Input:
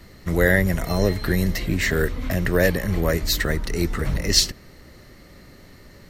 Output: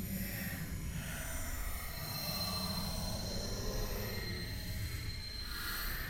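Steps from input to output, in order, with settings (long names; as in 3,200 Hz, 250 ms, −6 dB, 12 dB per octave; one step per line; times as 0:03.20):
guitar amp tone stack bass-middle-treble 5-5-5
downward compressor 3 to 1, threshold −47 dBFS, peak gain reduction 20 dB
tube saturation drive 46 dB, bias 0.55
extreme stretch with random phases 9.8×, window 0.05 s, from 0:00.66
backwards echo 132 ms −3.5 dB
level +11 dB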